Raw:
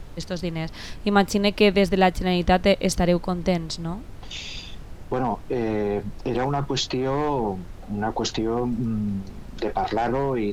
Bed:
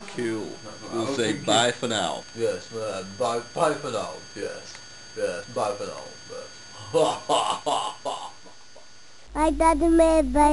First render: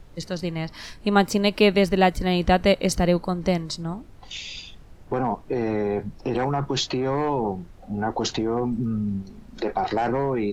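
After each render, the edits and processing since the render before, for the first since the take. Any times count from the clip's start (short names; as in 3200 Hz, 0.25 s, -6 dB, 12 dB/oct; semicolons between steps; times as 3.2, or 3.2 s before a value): noise print and reduce 8 dB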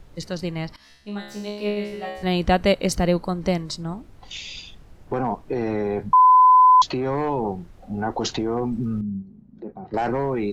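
0.76–2.23 resonator 69 Hz, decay 0.79 s, mix 100%; 6.13–6.82 bleep 1010 Hz -9 dBFS; 9.01–9.94 band-pass 170 Hz, Q 1.6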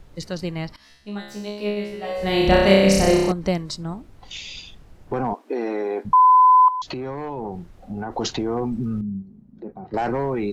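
2.01–3.32 flutter echo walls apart 5.3 m, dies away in 1.2 s; 5.33–6.05 brick-wall FIR high-pass 220 Hz; 6.68–8.17 compressor 10:1, threshold -25 dBFS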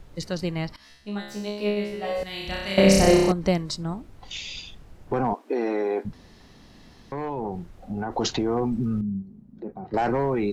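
2.23–2.78 passive tone stack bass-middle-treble 5-5-5; 6.13–7.12 room tone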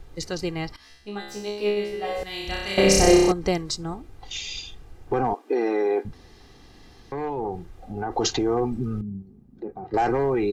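dynamic EQ 6600 Hz, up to +5 dB, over -49 dBFS, Q 1.9; comb 2.5 ms, depth 48%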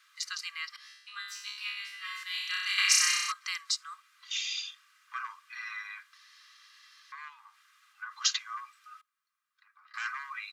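steep high-pass 1100 Hz 96 dB/oct; high shelf 9800 Hz -4.5 dB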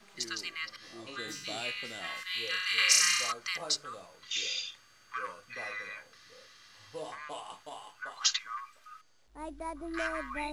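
add bed -20.5 dB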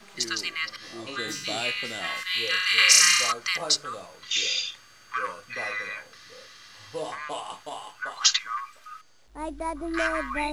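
gain +8 dB; limiter -3 dBFS, peak gain reduction 1.5 dB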